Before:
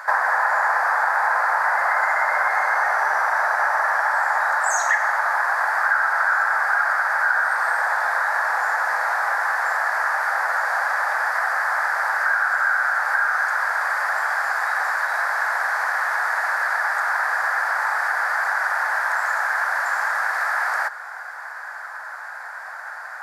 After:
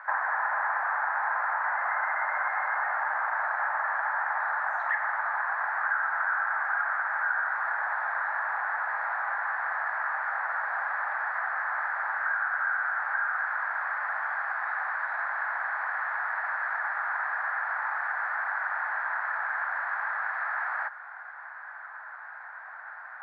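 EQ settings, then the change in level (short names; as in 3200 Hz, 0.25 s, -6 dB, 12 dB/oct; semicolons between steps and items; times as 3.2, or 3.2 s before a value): air absorption 420 m; three-band isolator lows -24 dB, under 560 Hz, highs -22 dB, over 3800 Hz; low shelf 440 Hz -7 dB; -4.5 dB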